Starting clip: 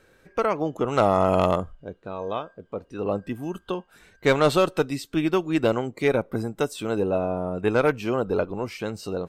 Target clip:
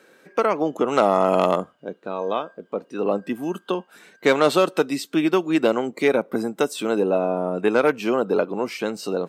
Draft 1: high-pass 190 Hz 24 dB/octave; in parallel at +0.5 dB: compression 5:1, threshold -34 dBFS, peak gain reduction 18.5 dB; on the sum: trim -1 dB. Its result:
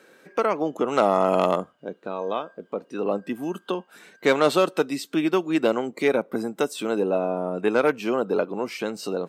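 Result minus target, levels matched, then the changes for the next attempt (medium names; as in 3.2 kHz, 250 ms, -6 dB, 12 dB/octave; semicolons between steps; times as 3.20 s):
compression: peak gain reduction +9 dB
change: compression 5:1, threshold -23 dBFS, peak gain reduction 9.5 dB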